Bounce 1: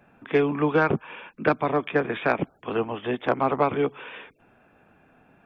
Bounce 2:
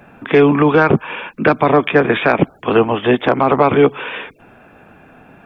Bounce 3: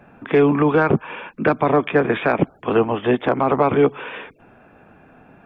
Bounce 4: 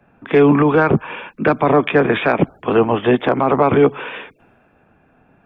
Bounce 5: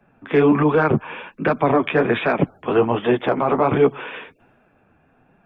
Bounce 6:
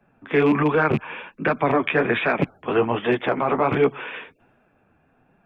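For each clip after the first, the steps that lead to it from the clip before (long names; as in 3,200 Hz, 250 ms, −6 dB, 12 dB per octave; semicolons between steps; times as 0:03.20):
boost into a limiter +15 dB; level −1 dB
high-shelf EQ 2,900 Hz −8.5 dB; level −4 dB
brickwall limiter −10 dBFS, peak gain reduction 4 dB; multiband upward and downward expander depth 40%; level +5.5 dB
flanger 1.3 Hz, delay 4.2 ms, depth 9.4 ms, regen −23%
loose part that buzzes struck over −18 dBFS, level −23 dBFS; dynamic equaliser 2,100 Hz, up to +6 dB, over −37 dBFS, Q 1.1; level −3.5 dB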